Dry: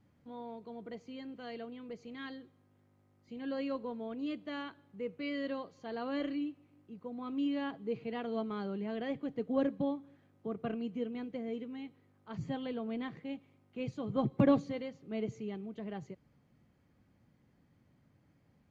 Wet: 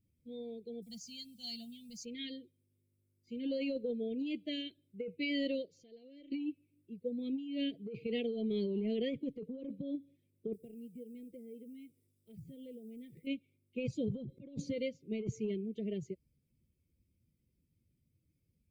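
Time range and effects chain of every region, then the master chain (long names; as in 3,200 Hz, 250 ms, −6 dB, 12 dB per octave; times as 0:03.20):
0:00.82–0:02.05: drawn EQ curve 230 Hz 0 dB, 370 Hz −27 dB, 540 Hz −14 dB, 830 Hz +7 dB, 2,000 Hz −10 dB, 5,200 Hz +12 dB + noise that follows the level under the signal 32 dB
0:05.65–0:06.32: downward compressor 3 to 1, threshold −53 dBFS + saturating transformer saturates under 420 Hz
0:10.53–0:13.27: high-shelf EQ 2,200 Hz −9 dB + downward compressor 4 to 1, threshold −48 dBFS + log-companded quantiser 8 bits
whole clip: spectral dynamics exaggerated over time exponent 1.5; elliptic band-stop filter 530–2,300 Hz, stop band 40 dB; compressor whose output falls as the input rises −45 dBFS, ratio −1; level +7.5 dB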